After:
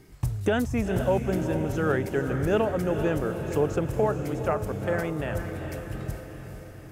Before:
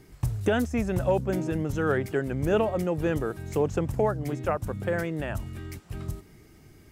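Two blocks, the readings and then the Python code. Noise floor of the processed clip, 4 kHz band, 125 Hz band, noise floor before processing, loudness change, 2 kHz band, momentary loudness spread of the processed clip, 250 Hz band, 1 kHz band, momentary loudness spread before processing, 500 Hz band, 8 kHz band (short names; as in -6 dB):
-44 dBFS, +1.0 dB, +1.0 dB, -54 dBFS, +0.5 dB, +1.0 dB, 10 LU, +1.0 dB, +1.0 dB, 12 LU, +1.0 dB, +1.0 dB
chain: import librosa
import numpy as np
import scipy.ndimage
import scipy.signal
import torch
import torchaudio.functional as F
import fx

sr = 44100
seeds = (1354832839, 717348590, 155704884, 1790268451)

y = fx.echo_diffused(x, sr, ms=453, feedback_pct=57, wet_db=-8.0)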